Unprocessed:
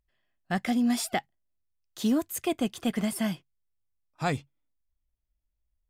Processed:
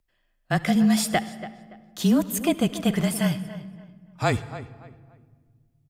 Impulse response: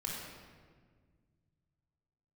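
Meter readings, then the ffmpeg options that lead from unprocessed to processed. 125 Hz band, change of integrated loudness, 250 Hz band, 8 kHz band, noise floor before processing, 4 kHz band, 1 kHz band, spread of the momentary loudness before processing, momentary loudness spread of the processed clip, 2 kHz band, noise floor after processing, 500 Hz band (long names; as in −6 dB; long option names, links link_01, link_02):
+10.5 dB, +5.5 dB, +5.5 dB, +5.5 dB, −80 dBFS, +5.5 dB, +4.5 dB, 7 LU, 19 LU, +5.5 dB, −70 dBFS, +6.0 dB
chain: -filter_complex "[0:a]afreqshift=-26,asplit=2[link_01][link_02];[link_02]adelay=285,lowpass=frequency=2700:poles=1,volume=-14dB,asplit=2[link_03][link_04];[link_04]adelay=285,lowpass=frequency=2700:poles=1,volume=0.3,asplit=2[link_05][link_06];[link_06]adelay=285,lowpass=frequency=2700:poles=1,volume=0.3[link_07];[link_01][link_03][link_05][link_07]amix=inputs=4:normalize=0,asplit=2[link_08][link_09];[1:a]atrim=start_sample=2205,adelay=72[link_10];[link_09][link_10]afir=irnorm=-1:irlink=0,volume=-18dB[link_11];[link_08][link_11]amix=inputs=2:normalize=0,volume=5.5dB"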